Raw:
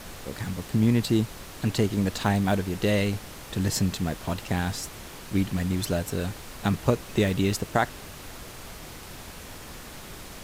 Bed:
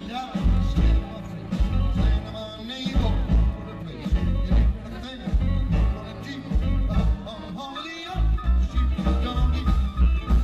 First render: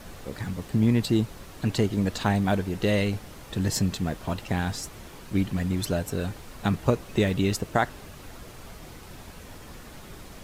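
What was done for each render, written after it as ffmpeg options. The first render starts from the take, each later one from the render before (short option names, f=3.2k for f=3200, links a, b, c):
-af "afftdn=nr=6:nf=-43"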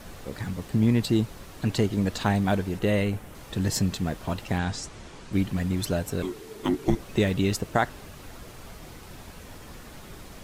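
-filter_complex "[0:a]asettb=1/sr,asplit=3[a][b][c];[a]atrim=end=2.794[d];[b]atrim=start=2.79:end=3.35,asetpts=PTS-STARTPTS,afade=t=in:d=0.004:c=qsin,afade=t=out:st=0.556:d=0.004:c=qsin,equalizer=f=4.8k:w=1.3:g=-8.5[e];[c]atrim=start=3.346[f];[d][e]acrossfade=d=0.004:c1=hsin:c2=qsin[g];[g][f]acrossfade=d=0.004:c1=qsin:c2=hsin,asettb=1/sr,asplit=3[h][i][j];[h]atrim=end=4.584[k];[i]atrim=start=4.58:end=5.33,asetpts=PTS-STARTPTS,afade=t=in:d=0.004:c=qsin,afade=t=out:st=0.746:d=0.004:c=qsin,lowpass=f=8.6k:w=0.5412,lowpass=f=8.6k:w=1.3066[l];[j]atrim=start=5.326[m];[k][l]acrossfade=d=0.004:c1=hsin:c2=qsin[n];[n][m]acrossfade=d=0.004:c1=qsin:c2=hsin,asettb=1/sr,asplit=3[o][p][q];[o]atrim=end=6.224[r];[p]atrim=start=6.22:end=6.99,asetpts=PTS-STARTPTS,afade=t=in:d=0.004:c=qsin,afade=t=out:st=0.766:d=0.004:c=qsin,afreqshift=-460[s];[q]atrim=start=6.986[t];[r][s]acrossfade=d=0.004:c1=hsin:c2=qsin[u];[u][t]acrossfade=d=0.004:c1=qsin:c2=hsin"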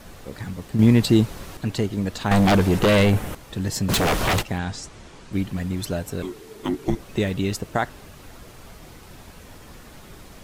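-filter_complex "[0:a]asettb=1/sr,asplit=3[a][b][c];[a]atrim=end=2.314[d];[b]atrim=start=2.31:end=3.35,asetpts=PTS-STARTPTS,afade=t=in:d=0.004:c=qsin,afade=t=out:st=1.036:d=0.004:c=qsin,aeval=exprs='0.237*sin(PI/2*2.82*val(0)/0.237)':c=same[e];[c]atrim=start=3.346[f];[d][e]acrossfade=d=0.004:c1=hsin:c2=qsin[g];[g][f]acrossfade=d=0.004:c1=qsin:c2=hsin,asplit=3[h][i][j];[h]afade=t=out:st=3.88:d=0.02[k];[i]aeval=exprs='0.15*sin(PI/2*6.31*val(0)/0.15)':c=same,afade=t=in:st=3.88:d=0.02,afade=t=out:st=4.41:d=0.02[l];[j]afade=t=in:st=4.41:d=0.02[m];[k][l][m]amix=inputs=3:normalize=0,asplit=3[n][o][p];[n]atrim=end=0.792[q];[o]atrim=start=0.788:end=1.572,asetpts=PTS-STARTPTS,volume=6.5dB[r];[p]atrim=start=1.568[s];[q][r]acrossfade=d=0.004:c1=hsin:c2=hsin[t];[t][s]acrossfade=d=0.004:c1=hsin:c2=hsin"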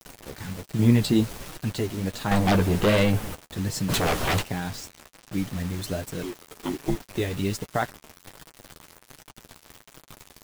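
-af "acrusher=bits=5:mix=0:aa=0.000001,flanger=delay=6.2:depth=6.8:regen=-26:speed=1.3:shape=sinusoidal"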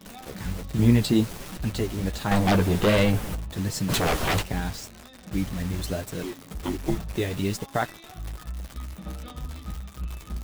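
-filter_complex "[1:a]volume=-14dB[a];[0:a][a]amix=inputs=2:normalize=0"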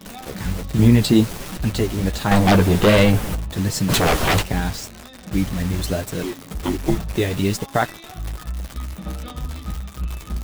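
-af "volume=6.5dB,alimiter=limit=-3dB:level=0:latency=1"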